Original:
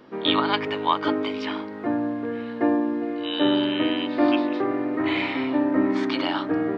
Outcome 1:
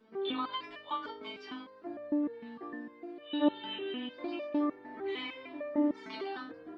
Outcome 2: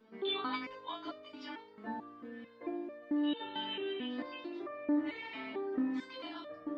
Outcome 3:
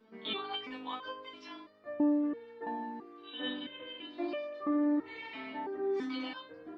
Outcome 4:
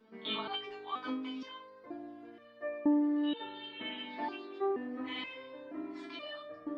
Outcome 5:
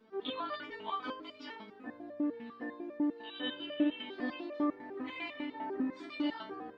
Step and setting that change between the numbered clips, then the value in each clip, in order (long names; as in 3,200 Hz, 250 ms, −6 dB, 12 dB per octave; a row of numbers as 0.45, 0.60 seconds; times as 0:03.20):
step-sequenced resonator, speed: 6.6, 4.5, 3, 2.1, 10 Hertz